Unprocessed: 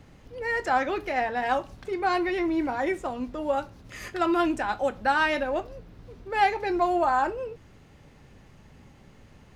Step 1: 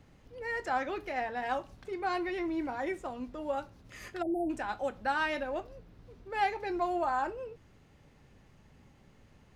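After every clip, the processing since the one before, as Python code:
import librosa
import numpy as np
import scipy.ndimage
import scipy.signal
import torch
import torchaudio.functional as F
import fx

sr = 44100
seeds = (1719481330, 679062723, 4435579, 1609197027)

y = fx.spec_erase(x, sr, start_s=4.22, length_s=0.28, low_hz=930.0, high_hz=8500.0)
y = y * 10.0 ** (-7.5 / 20.0)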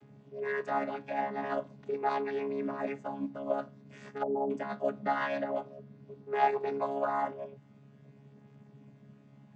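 y = fx.chord_vocoder(x, sr, chord='bare fifth', root=49)
y = y * 10.0 ** (2.0 / 20.0)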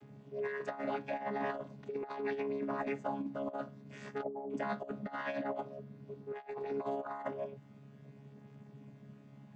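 y = fx.over_compress(x, sr, threshold_db=-35.0, ratio=-0.5)
y = y * 10.0 ** (-2.0 / 20.0)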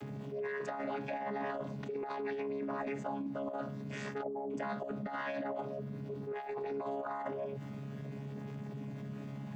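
y = fx.env_flatten(x, sr, amount_pct=70)
y = y * 10.0 ** (-3.0 / 20.0)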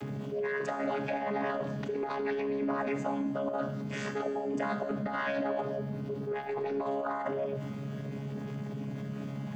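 y = fx.rev_schroeder(x, sr, rt60_s=1.6, comb_ms=25, drr_db=8.0)
y = y * 10.0 ** (5.5 / 20.0)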